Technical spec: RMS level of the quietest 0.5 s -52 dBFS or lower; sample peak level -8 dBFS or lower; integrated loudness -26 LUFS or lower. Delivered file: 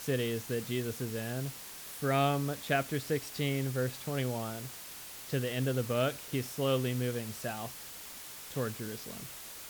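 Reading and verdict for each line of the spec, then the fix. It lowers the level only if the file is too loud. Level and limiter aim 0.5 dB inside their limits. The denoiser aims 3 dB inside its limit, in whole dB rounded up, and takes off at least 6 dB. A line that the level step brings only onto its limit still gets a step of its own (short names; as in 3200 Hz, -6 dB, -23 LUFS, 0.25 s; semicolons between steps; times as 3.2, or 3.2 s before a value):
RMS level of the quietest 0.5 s -46 dBFS: fail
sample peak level -16.5 dBFS: OK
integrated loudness -34.5 LUFS: OK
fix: denoiser 9 dB, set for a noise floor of -46 dBFS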